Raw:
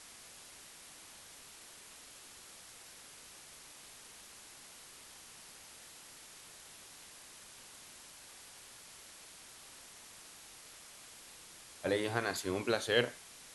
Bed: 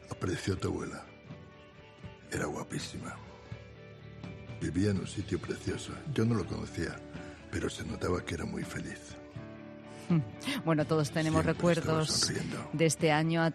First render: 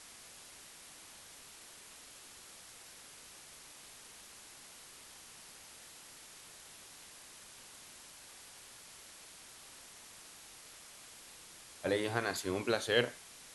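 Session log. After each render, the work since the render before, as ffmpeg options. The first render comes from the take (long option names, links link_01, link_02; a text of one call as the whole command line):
ffmpeg -i in.wav -af anull out.wav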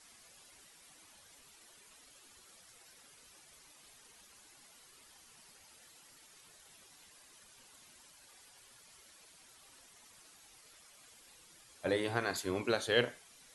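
ffmpeg -i in.wav -af "afftdn=noise_reduction=10:noise_floor=-55" out.wav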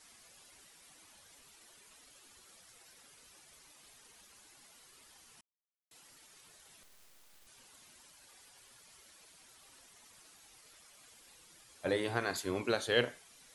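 ffmpeg -i in.wav -filter_complex "[0:a]asettb=1/sr,asplit=3[link_01][link_02][link_03];[link_01]atrim=end=6.834[link_04];[link_02]atrim=start=6.83:end=7.47,asetpts=PTS-STARTPTS,afade=type=in:duration=0.004:curve=qsin,afade=type=out:start_time=0.636:duration=0.004:curve=qsin,aeval=exprs='abs(val(0))':channel_layout=same[link_05];[link_03]atrim=start=7.466[link_06];[link_04][link_05]acrossfade=duration=0.004:curve1=hsin:curve2=qsin[link_07];[link_07][link_06]acrossfade=duration=0.004:curve1=qsin:curve2=hsin,asplit=3[link_08][link_09][link_10];[link_08]atrim=end=5.41,asetpts=PTS-STARTPTS,afade=type=out:start_time=5.406:duration=0.004:curve=hsin[link_11];[link_09]atrim=start=5.41:end=5.91,asetpts=PTS-STARTPTS,volume=0[link_12];[link_10]atrim=start=5.91,asetpts=PTS-STARTPTS,afade=type=in:duration=0.004:curve=hsin[link_13];[link_11][link_12][link_13]concat=n=3:v=0:a=1" out.wav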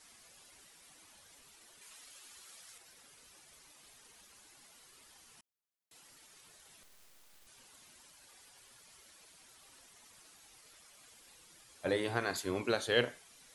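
ffmpeg -i in.wav -filter_complex "[0:a]asettb=1/sr,asplit=3[link_01][link_02][link_03];[link_01]atrim=end=1.814[link_04];[link_02]atrim=start=1.81:end=2.78,asetpts=PTS-STARTPTS,afade=type=in:duration=0.004:curve=qsin,afade=type=out:start_time=0.966:duration=0.004:curve=qsin,tiltshelf=frequency=650:gain=-5[link_05];[link_03]atrim=start=2.776[link_06];[link_04][link_05]acrossfade=duration=0.004:curve1=hsin:curve2=qsin[link_07];[link_07][link_06]acrossfade=duration=0.004:curve1=qsin:curve2=hsin" out.wav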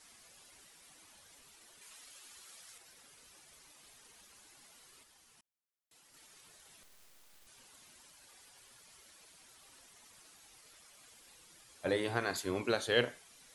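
ffmpeg -i in.wav -filter_complex "[0:a]asplit=3[link_01][link_02][link_03];[link_01]atrim=end=5.032[link_04];[link_02]atrim=start=5.028:end=6.142,asetpts=PTS-STARTPTS,volume=-4.5dB[link_05];[link_03]atrim=start=6.138[link_06];[link_04][link_05]acrossfade=duration=0.004:curve1=hsin:curve2=hsin[link_07];[link_07][link_06]acrossfade=duration=0.004:curve1=hsin:curve2=hsin" out.wav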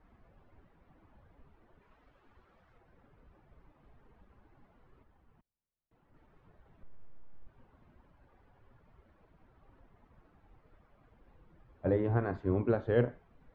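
ffmpeg -i in.wav -af "lowpass=1300,aemphasis=mode=reproduction:type=riaa" out.wav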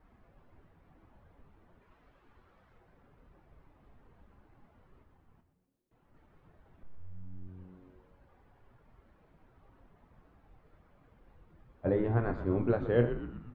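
ffmpeg -i in.wav -filter_complex "[0:a]asplit=2[link_01][link_02];[link_02]adelay=25,volume=-10.5dB[link_03];[link_01][link_03]amix=inputs=2:normalize=0,asplit=2[link_04][link_05];[link_05]asplit=6[link_06][link_07][link_08][link_09][link_10][link_11];[link_06]adelay=123,afreqshift=-92,volume=-10dB[link_12];[link_07]adelay=246,afreqshift=-184,volume=-15.2dB[link_13];[link_08]adelay=369,afreqshift=-276,volume=-20.4dB[link_14];[link_09]adelay=492,afreqshift=-368,volume=-25.6dB[link_15];[link_10]adelay=615,afreqshift=-460,volume=-30.8dB[link_16];[link_11]adelay=738,afreqshift=-552,volume=-36dB[link_17];[link_12][link_13][link_14][link_15][link_16][link_17]amix=inputs=6:normalize=0[link_18];[link_04][link_18]amix=inputs=2:normalize=0" out.wav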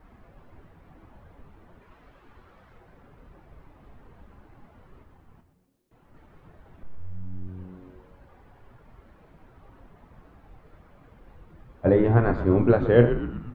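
ffmpeg -i in.wav -af "volume=10dB" out.wav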